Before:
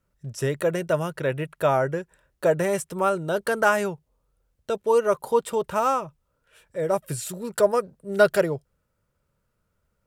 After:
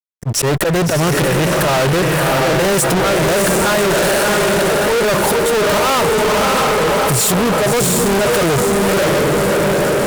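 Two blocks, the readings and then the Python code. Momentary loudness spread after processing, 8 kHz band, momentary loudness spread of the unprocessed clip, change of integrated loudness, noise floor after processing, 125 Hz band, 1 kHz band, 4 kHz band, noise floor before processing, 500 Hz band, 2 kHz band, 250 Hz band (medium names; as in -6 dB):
1 LU, +20.0 dB, 11 LU, +10.5 dB, -17 dBFS, +15.0 dB, +11.0 dB, +22.0 dB, -75 dBFS, +9.5 dB, +13.0 dB, +15.0 dB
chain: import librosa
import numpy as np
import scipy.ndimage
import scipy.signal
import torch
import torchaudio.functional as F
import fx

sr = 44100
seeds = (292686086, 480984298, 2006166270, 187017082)

y = fx.auto_swell(x, sr, attack_ms=427.0)
y = fx.echo_diffused(y, sr, ms=654, feedback_pct=48, wet_db=-4.5)
y = fx.fuzz(y, sr, gain_db=53.0, gate_db=-59.0)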